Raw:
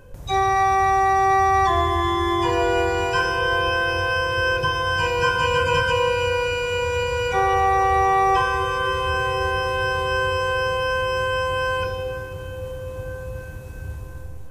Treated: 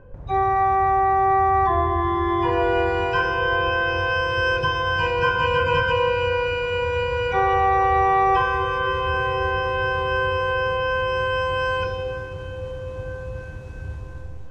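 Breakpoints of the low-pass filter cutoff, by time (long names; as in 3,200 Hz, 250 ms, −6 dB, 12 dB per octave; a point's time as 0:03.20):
0:01.96 1,500 Hz
0:02.87 3,000 Hz
0:03.71 3,000 Hz
0:04.49 5,300 Hz
0:05.19 3,100 Hz
0:10.82 3,100 Hz
0:11.67 5,100 Hz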